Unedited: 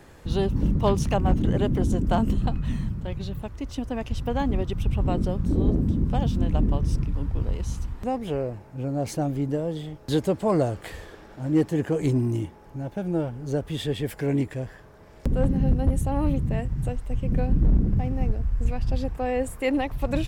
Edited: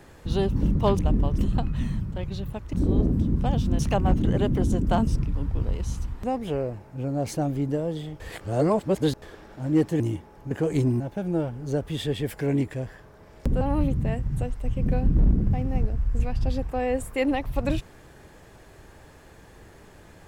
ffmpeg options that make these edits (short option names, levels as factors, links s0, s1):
-filter_complex "[0:a]asplit=12[s0][s1][s2][s3][s4][s5][s6][s7][s8][s9][s10][s11];[s0]atrim=end=0.992[s12];[s1]atrim=start=6.478:end=6.872[s13];[s2]atrim=start=2.268:end=3.622[s14];[s3]atrim=start=5.418:end=6.482[s15];[s4]atrim=start=0.988:end=2.272[s16];[s5]atrim=start=6.868:end=10.002[s17];[s6]atrim=start=9.998:end=11.022,asetpts=PTS-STARTPTS,areverse[s18];[s7]atrim=start=11.018:end=11.802[s19];[s8]atrim=start=12.288:end=12.802[s20];[s9]atrim=start=11.798:end=12.292[s21];[s10]atrim=start=12.798:end=15.412[s22];[s11]atrim=start=16.068[s23];[s12][s13]acrossfade=d=0.004:c1=hsin:c2=hsin[s24];[s24][s14]acrossfade=d=0.004:c1=hsin:c2=hsin[s25];[s25][s15]acrossfade=d=0.004:c1=hsin:c2=hsin[s26];[s26][s16]acrossfade=d=0.004:c1=hsin:c2=hsin[s27];[s27][s17]acrossfade=d=0.004:c1=hsin:c2=hsin[s28];[s28][s18]acrossfade=d=0.004:c1=hsin:c2=hsin[s29];[s29][s19]acrossfade=d=0.004:c1=hsin:c2=hsin[s30];[s30][s20]acrossfade=d=0.004:c1=hsin:c2=hsin[s31];[s31][s21]acrossfade=d=0.004:c1=hsin:c2=hsin[s32];[s32][s22]acrossfade=d=0.004:c1=hsin:c2=hsin[s33];[s33][s23]acrossfade=d=0.004:c1=hsin:c2=hsin"